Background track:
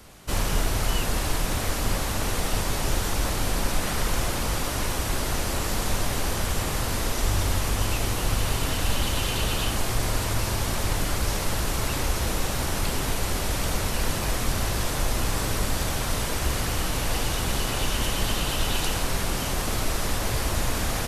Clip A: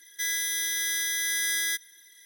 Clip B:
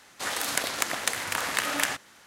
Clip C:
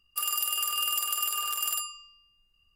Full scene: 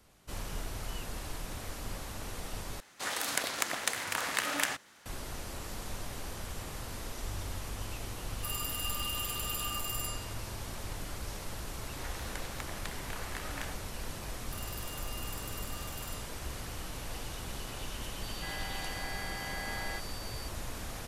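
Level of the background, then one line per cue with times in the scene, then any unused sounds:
background track −14.5 dB
0:02.80: overwrite with B −4.5 dB
0:08.27: mix in C −4.5 dB + brickwall limiter −21.5 dBFS
0:11.78: mix in B −13.5 dB + low-pass filter 2,700 Hz 6 dB per octave
0:14.35: mix in C −17.5 dB
0:18.23: mix in A −8.5 dB + switching amplifier with a slow clock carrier 4,600 Hz

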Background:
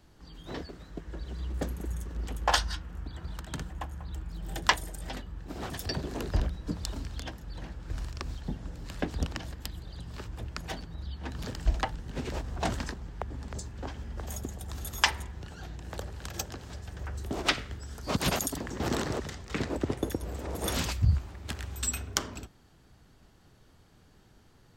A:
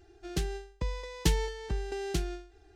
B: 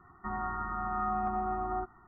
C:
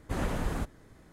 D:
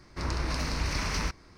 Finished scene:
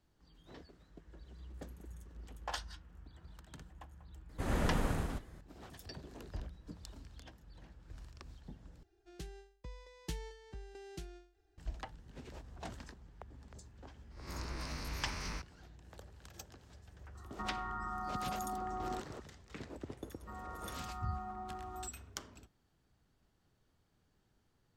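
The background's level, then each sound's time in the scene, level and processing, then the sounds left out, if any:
background −15.5 dB
0:04.29: mix in C −5 dB + loudspeakers that aren't time-aligned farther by 33 metres −2 dB, 46 metres −5 dB, 84 metres −3 dB
0:08.83: overwrite with A −15.5 dB
0:14.11: mix in D −13 dB + peak hold with a rise ahead of every peak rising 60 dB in 0.49 s
0:17.15: mix in B −1.5 dB + downward compressor, threshold −35 dBFS
0:20.03: mix in B −12.5 dB

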